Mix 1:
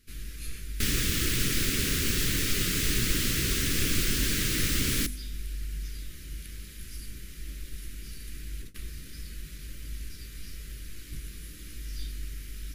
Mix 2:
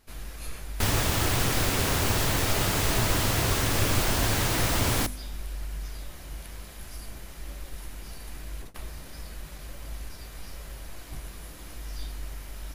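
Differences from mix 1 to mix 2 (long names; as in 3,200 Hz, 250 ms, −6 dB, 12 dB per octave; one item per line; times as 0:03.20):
background: add parametric band 100 Hz +14 dB 0.33 octaves
master: remove Butterworth band-reject 790 Hz, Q 0.58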